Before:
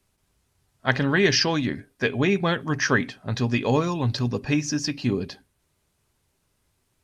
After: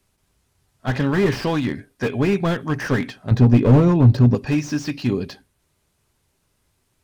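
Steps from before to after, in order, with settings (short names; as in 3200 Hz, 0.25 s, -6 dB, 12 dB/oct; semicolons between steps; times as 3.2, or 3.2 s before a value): 3.31–4.35 tilt shelf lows +9.5 dB, about 1200 Hz; slew limiter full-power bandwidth 67 Hz; gain +3 dB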